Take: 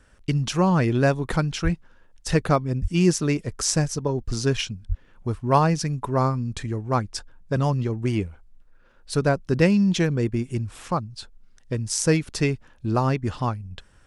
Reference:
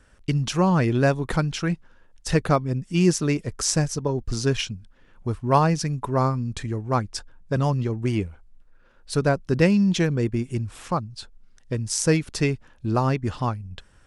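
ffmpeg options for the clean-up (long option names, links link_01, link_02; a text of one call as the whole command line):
ffmpeg -i in.wav -filter_complex "[0:a]asplit=3[link_01][link_02][link_03];[link_01]afade=type=out:start_time=1.63:duration=0.02[link_04];[link_02]highpass=frequency=140:width=0.5412,highpass=frequency=140:width=1.3066,afade=type=in:start_time=1.63:duration=0.02,afade=type=out:start_time=1.75:duration=0.02[link_05];[link_03]afade=type=in:start_time=1.75:duration=0.02[link_06];[link_04][link_05][link_06]amix=inputs=3:normalize=0,asplit=3[link_07][link_08][link_09];[link_07]afade=type=out:start_time=2.81:duration=0.02[link_10];[link_08]highpass=frequency=140:width=0.5412,highpass=frequency=140:width=1.3066,afade=type=in:start_time=2.81:duration=0.02,afade=type=out:start_time=2.93:duration=0.02[link_11];[link_09]afade=type=in:start_time=2.93:duration=0.02[link_12];[link_10][link_11][link_12]amix=inputs=3:normalize=0,asplit=3[link_13][link_14][link_15];[link_13]afade=type=out:start_time=4.88:duration=0.02[link_16];[link_14]highpass=frequency=140:width=0.5412,highpass=frequency=140:width=1.3066,afade=type=in:start_time=4.88:duration=0.02,afade=type=out:start_time=5:duration=0.02[link_17];[link_15]afade=type=in:start_time=5:duration=0.02[link_18];[link_16][link_17][link_18]amix=inputs=3:normalize=0" out.wav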